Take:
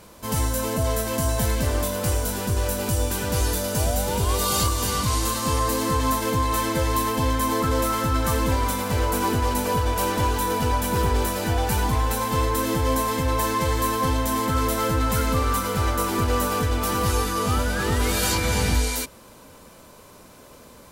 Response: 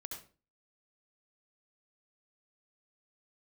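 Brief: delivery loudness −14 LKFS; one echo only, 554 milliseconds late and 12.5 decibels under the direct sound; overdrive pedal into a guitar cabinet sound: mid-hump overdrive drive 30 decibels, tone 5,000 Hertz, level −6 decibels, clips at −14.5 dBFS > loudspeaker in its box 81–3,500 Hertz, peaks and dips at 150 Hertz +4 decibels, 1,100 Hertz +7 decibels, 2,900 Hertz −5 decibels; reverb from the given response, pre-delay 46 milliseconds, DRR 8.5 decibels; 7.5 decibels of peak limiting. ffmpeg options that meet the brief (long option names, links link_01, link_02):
-filter_complex "[0:a]alimiter=limit=-19dB:level=0:latency=1,aecho=1:1:554:0.237,asplit=2[link_01][link_02];[1:a]atrim=start_sample=2205,adelay=46[link_03];[link_02][link_03]afir=irnorm=-1:irlink=0,volume=-5.5dB[link_04];[link_01][link_04]amix=inputs=2:normalize=0,asplit=2[link_05][link_06];[link_06]highpass=frequency=720:poles=1,volume=30dB,asoftclip=type=tanh:threshold=-14.5dB[link_07];[link_05][link_07]amix=inputs=2:normalize=0,lowpass=frequency=5000:poles=1,volume=-6dB,highpass=81,equalizer=frequency=150:width_type=q:width=4:gain=4,equalizer=frequency=1100:width_type=q:width=4:gain=7,equalizer=frequency=2900:width_type=q:width=4:gain=-5,lowpass=frequency=3500:width=0.5412,lowpass=frequency=3500:width=1.3066,volume=5dB"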